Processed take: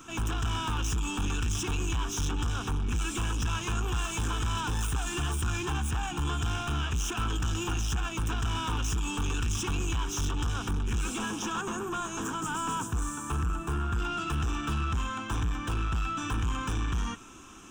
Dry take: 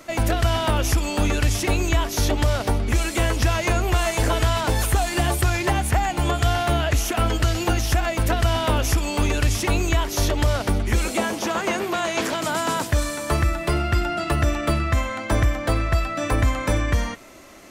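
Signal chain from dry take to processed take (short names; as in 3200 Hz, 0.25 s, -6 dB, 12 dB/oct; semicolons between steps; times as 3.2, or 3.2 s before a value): 11.61–13.99 band shelf 3200 Hz -11 dB; soft clip -25.5 dBFS, distortion -7 dB; fixed phaser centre 3000 Hz, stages 8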